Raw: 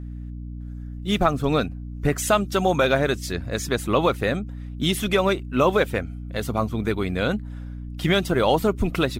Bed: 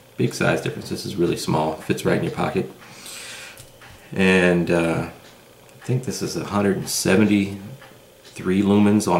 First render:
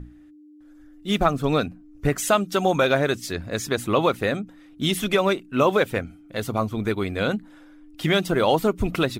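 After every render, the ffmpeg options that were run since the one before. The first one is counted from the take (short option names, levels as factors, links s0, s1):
-af "bandreject=f=60:t=h:w=6,bandreject=f=120:t=h:w=6,bandreject=f=180:t=h:w=6,bandreject=f=240:t=h:w=6"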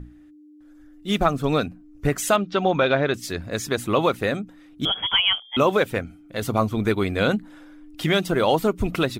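-filter_complex "[0:a]asettb=1/sr,asplit=3[s0][s1][s2];[s0]atrim=end=2.364[s3];[s1]atrim=start=2.36:end=3.14,asetpts=PTS-STARTPTS,afade=t=in:d=0.004:c=qsin,afade=t=out:st=0.776:d=0.004:c=qsin,lowpass=f=4400:w=0.5412,lowpass=f=4400:w=1.3066[s4];[s2]atrim=start=3.136[s5];[s3][s4]acrossfade=d=0.004:c1=hsin:c2=qsin[s6];[s6][s5]acrossfade=d=0.004:c1=qsin:c2=hsin,asettb=1/sr,asplit=3[s7][s8][s9];[s7]atrim=end=4.854[s10];[s8]atrim=start=4.85:end=5.57,asetpts=PTS-STARTPTS,afade=t=in:d=0.004:c=qsin,afade=t=out:st=0.716:d=0.004:c=qsin,lowpass=f=3000:t=q:w=0.5098,lowpass=f=3000:t=q:w=0.6013,lowpass=f=3000:t=q:w=0.9,lowpass=f=3000:t=q:w=2.563,afreqshift=-3500[s11];[s9]atrim=start=5.566[s12];[s10][s11]acrossfade=d=0.004:c1=hsin:c2=qsin[s13];[s13][s12]acrossfade=d=0.004:c1=qsin:c2=hsin,asplit=3[s14][s15][s16];[s14]atrim=end=6.422[s17];[s15]atrim=start=6.418:end=8.042,asetpts=PTS-STARTPTS,volume=1.41[s18];[s16]atrim=start=8.038[s19];[s17][s18]acrossfade=d=0.004:c1=hsin:c2=hsin[s20];[s20][s19]acrossfade=d=0.004:c1=hsin:c2=hsin"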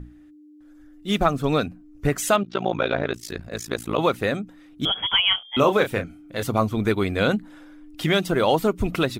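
-filter_complex "[0:a]asettb=1/sr,asplit=3[s0][s1][s2];[s0]atrim=end=2.434[s3];[s1]atrim=start=2.43:end=3.99,asetpts=PTS-STARTPTS,afade=t=in:d=0.004:c=qsin,afade=t=out:st=1.556:d=0.004:c=qsin,tremolo=f=56:d=0.947[s4];[s2]atrim=start=3.986[s5];[s3][s4]acrossfade=d=0.004:c1=hsin:c2=qsin[s6];[s6][s5]acrossfade=d=0.004:c1=qsin:c2=hsin,asettb=1/sr,asplit=3[s7][s8][s9];[s7]atrim=end=5.244[s10];[s8]atrim=start=5.24:end=6.43,asetpts=PTS-STARTPTS,afade=t=in:d=0.004:c=qsin,afade=t=out:st=1.186:d=0.004:c=qsin,asplit=2[s11][s12];[s12]adelay=30,volume=0.398[s13];[s11][s13]amix=inputs=2:normalize=0,atrim=end_sample=52479[s14];[s9]atrim=start=6.426[s15];[s10][s14]acrossfade=d=0.004:c1=hsin:c2=qsin[s16];[s16][s15]acrossfade=d=0.004:c1=qsin:c2=hsin"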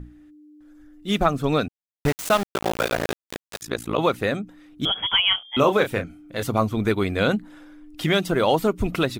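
-filter_complex "[0:a]asettb=1/sr,asplit=3[s0][s1][s2];[s0]atrim=end=1.684[s3];[s1]atrim=start=1.68:end=3.62,asetpts=PTS-STARTPTS,afade=t=in:d=0.004:c=qsin,afade=t=out:st=1.936:d=0.004:c=qsin,aeval=exprs='val(0)*gte(abs(val(0)),0.075)':c=same[s4];[s2]atrim=start=3.616[s5];[s3][s4]acrossfade=d=0.004:c1=hsin:c2=qsin[s6];[s6][s5]acrossfade=d=0.004:c1=qsin:c2=hsin"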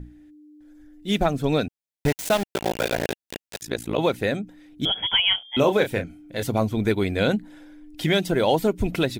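-af "equalizer=f=1200:t=o:w=0.33:g=-12.5,bandreject=f=2800:w=29"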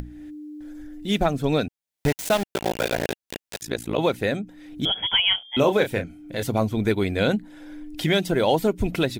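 -af "acompressor=mode=upward:threshold=0.0398:ratio=2.5"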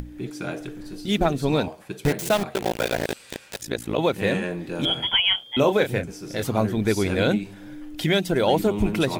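-filter_complex "[1:a]volume=0.237[s0];[0:a][s0]amix=inputs=2:normalize=0"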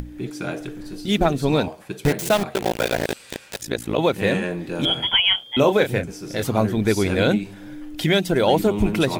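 -af "volume=1.33"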